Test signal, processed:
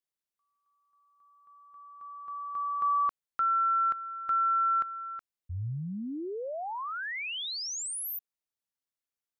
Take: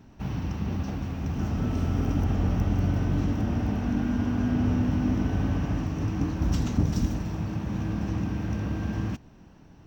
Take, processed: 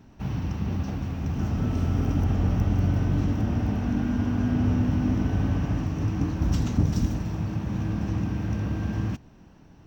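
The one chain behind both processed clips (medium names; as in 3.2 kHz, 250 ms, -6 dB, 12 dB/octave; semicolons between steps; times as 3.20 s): dynamic bell 110 Hz, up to +3 dB, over -37 dBFS, Q 1.3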